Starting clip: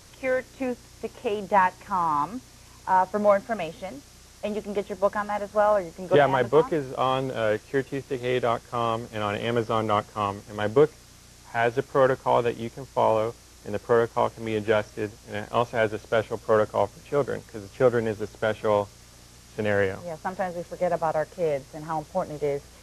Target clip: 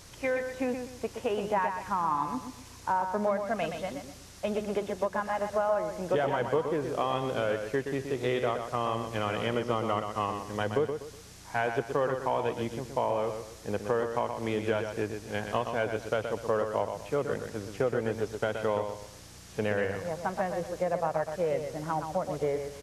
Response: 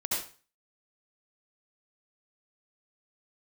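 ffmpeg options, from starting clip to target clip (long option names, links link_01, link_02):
-filter_complex "[0:a]acompressor=threshold=-26dB:ratio=4,asplit=2[link_01][link_02];[link_02]aecho=0:1:123|246|369|492:0.447|0.147|0.0486|0.0161[link_03];[link_01][link_03]amix=inputs=2:normalize=0"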